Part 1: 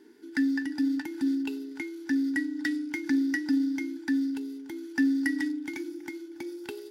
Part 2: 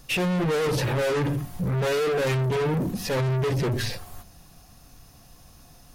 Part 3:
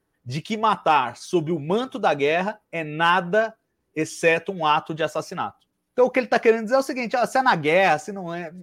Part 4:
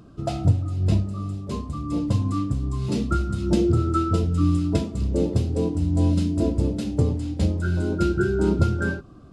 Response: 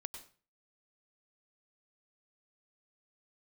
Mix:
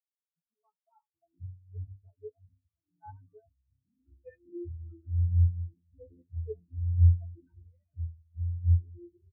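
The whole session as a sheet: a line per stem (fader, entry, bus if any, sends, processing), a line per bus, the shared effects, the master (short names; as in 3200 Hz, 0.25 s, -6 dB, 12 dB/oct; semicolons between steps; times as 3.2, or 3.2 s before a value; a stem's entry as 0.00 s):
-4.0 dB, 0.95 s, no send, no echo send, steep high-pass 200 Hz 48 dB/oct
-10.5 dB, 2.25 s, no send, no echo send, vowel sequencer 3.4 Hz
-7.5 dB, 0.00 s, no send, no echo send, comb 4.5 ms, depth 96%; rotary speaker horn 0.9 Hz
-1.0 dB, 0.95 s, send -10 dB, echo send -7 dB, hard clip -19.5 dBFS, distortion -10 dB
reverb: on, RT60 0.40 s, pre-delay 90 ms
echo: echo 0.624 s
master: resonator 85 Hz, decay 0.17 s, harmonics all, mix 100%; spectral expander 4:1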